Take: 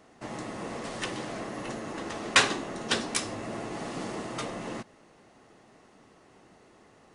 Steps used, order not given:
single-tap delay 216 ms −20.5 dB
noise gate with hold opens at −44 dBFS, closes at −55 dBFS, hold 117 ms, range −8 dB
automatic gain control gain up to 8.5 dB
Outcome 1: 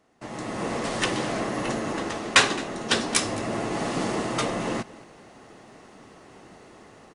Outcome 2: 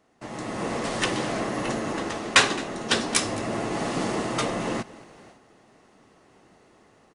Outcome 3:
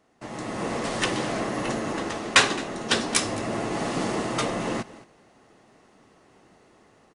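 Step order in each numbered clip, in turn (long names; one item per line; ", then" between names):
single-tap delay, then automatic gain control, then noise gate with hold
single-tap delay, then noise gate with hold, then automatic gain control
noise gate with hold, then single-tap delay, then automatic gain control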